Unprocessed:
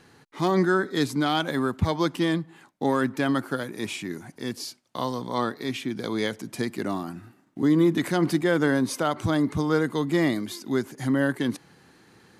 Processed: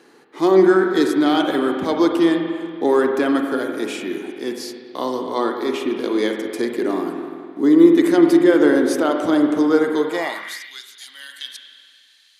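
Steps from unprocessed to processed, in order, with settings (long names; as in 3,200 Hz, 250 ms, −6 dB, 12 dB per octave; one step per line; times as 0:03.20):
spring reverb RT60 2.1 s, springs 42/47 ms, chirp 70 ms, DRR 3 dB
high-pass filter sweep 340 Hz → 3,500 Hz, 0:09.95–0:10.83
level +2 dB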